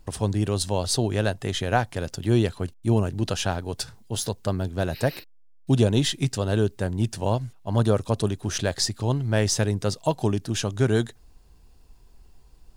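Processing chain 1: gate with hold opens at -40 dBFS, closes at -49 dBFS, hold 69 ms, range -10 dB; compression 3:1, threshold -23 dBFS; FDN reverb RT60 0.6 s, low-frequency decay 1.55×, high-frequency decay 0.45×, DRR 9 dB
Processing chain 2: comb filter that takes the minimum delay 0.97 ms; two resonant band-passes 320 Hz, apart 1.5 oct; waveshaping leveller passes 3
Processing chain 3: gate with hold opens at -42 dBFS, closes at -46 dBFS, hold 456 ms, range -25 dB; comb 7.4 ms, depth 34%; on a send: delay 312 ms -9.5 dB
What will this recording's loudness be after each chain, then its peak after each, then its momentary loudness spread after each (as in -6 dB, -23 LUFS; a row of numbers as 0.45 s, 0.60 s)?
-28.0 LUFS, -30.0 LUFS, -24.5 LUFS; -11.5 dBFS, -21.5 dBFS, -7.0 dBFS; 5 LU, 5 LU, 7 LU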